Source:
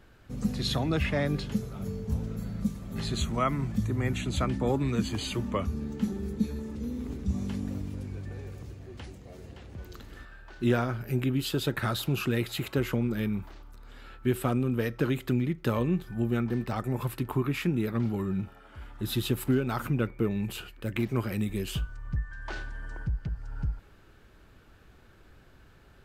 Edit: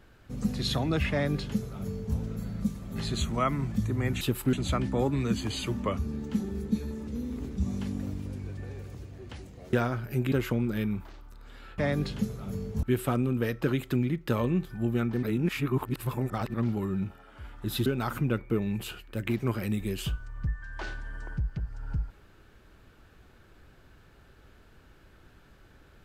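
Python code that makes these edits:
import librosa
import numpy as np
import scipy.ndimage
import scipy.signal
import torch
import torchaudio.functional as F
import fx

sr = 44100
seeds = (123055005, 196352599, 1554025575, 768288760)

y = fx.edit(x, sr, fx.duplicate(start_s=1.11, length_s=1.05, to_s=14.2),
    fx.cut(start_s=9.41, length_s=1.29),
    fx.cut(start_s=11.29, length_s=1.45),
    fx.reverse_span(start_s=16.6, length_s=1.31),
    fx.move(start_s=19.23, length_s=0.32, to_s=4.21), tone=tone)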